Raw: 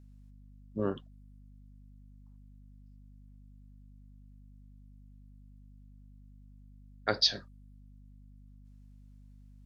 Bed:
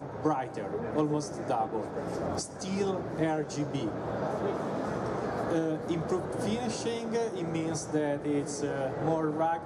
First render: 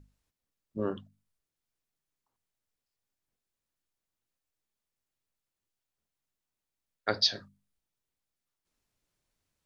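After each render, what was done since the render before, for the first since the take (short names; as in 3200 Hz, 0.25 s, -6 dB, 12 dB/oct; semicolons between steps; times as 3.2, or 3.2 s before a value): notches 50/100/150/200/250 Hz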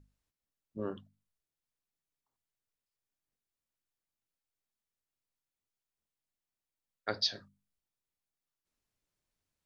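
gain -5.5 dB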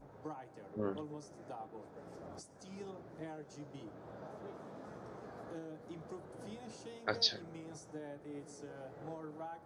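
add bed -17.5 dB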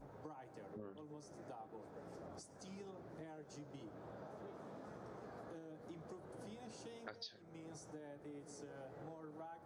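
compressor 6:1, threshold -49 dBFS, peak gain reduction 21.5 dB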